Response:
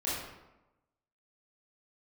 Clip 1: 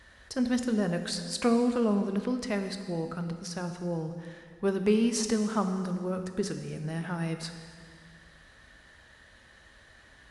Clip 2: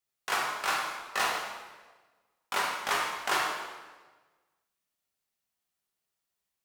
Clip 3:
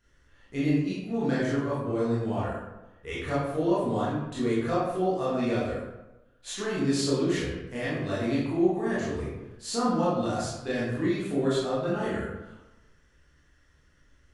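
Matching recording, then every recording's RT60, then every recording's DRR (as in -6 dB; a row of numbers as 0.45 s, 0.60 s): 3; 2.0 s, 1.3 s, 1.0 s; 6.5 dB, -3.0 dB, -9.5 dB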